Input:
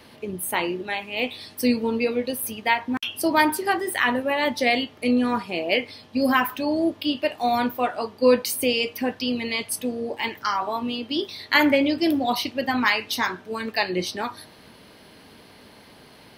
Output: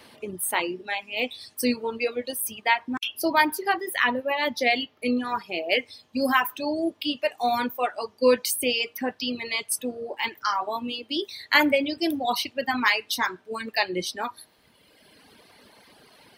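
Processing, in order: bell 8600 Hz +5 dB 0.31 oct, from 3.08 s -11.5 dB, from 5.71 s +3.5 dB; reverb removal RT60 1.8 s; low shelf 250 Hz -7.5 dB

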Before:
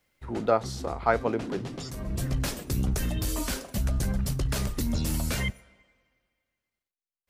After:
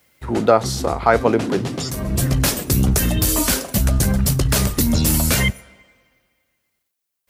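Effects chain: HPF 57 Hz; high shelf 8900 Hz +8.5 dB; maximiser +12.5 dB; gain -1 dB

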